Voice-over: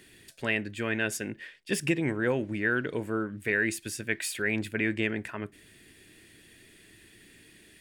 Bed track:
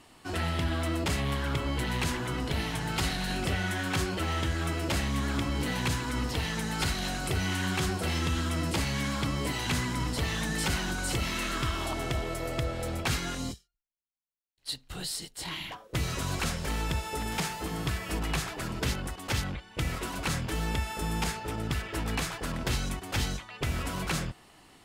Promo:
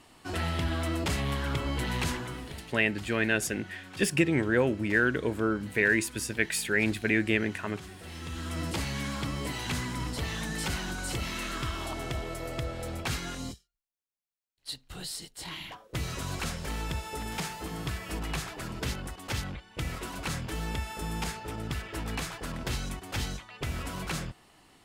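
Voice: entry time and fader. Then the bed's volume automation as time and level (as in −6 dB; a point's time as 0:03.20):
2.30 s, +2.5 dB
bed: 0:02.11 −0.5 dB
0:02.73 −16.5 dB
0:07.97 −16.5 dB
0:08.60 −3 dB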